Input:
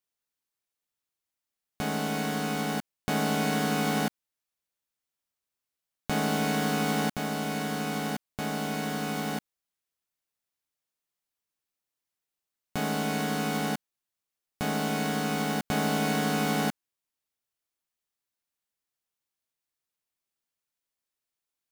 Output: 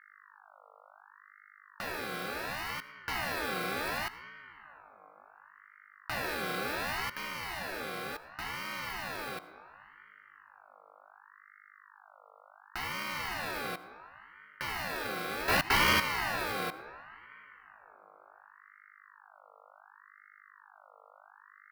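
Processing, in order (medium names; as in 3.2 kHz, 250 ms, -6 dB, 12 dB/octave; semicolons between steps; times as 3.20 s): 15.48–16.00 s: waveshaping leveller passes 5; static phaser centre 1.3 kHz, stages 8; mains buzz 50 Hz, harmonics 9, -56 dBFS 0 dB/octave; on a send at -13 dB: reverberation RT60 3.7 s, pre-delay 40 ms; on the sum: ring modulator with a swept carrier 1.3 kHz, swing 30%, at 0.69 Hz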